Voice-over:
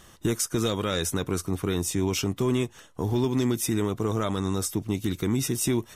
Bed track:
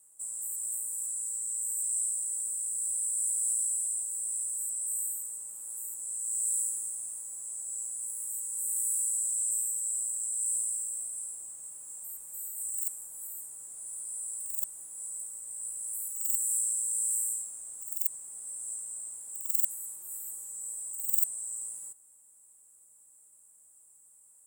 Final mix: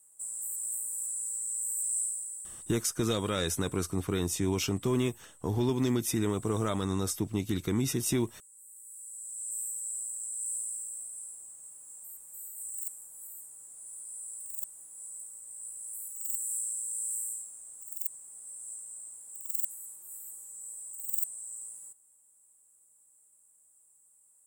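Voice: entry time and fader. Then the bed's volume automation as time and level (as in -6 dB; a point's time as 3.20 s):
2.45 s, -3.5 dB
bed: 2.00 s -0.5 dB
2.96 s -20 dB
8.82 s -20 dB
9.63 s -4.5 dB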